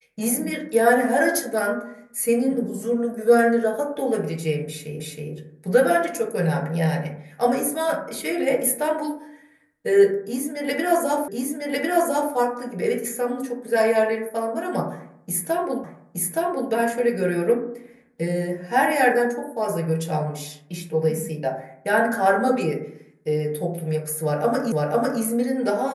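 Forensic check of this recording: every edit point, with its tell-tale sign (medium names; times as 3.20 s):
5.00 s: repeat of the last 0.32 s
11.28 s: repeat of the last 1.05 s
15.84 s: repeat of the last 0.87 s
24.72 s: repeat of the last 0.5 s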